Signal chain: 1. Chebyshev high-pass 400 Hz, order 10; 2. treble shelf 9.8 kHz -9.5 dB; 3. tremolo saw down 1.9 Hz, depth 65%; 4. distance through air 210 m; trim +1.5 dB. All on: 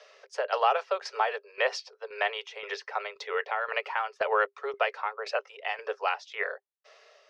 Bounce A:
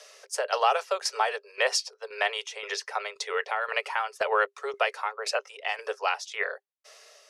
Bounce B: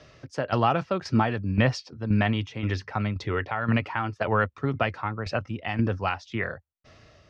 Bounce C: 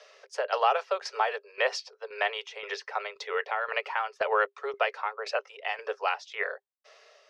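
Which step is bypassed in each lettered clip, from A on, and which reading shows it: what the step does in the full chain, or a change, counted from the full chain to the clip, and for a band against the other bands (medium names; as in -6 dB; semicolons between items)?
4, 8 kHz band +13.5 dB; 1, momentary loudness spread change -3 LU; 2, 8 kHz band +2.0 dB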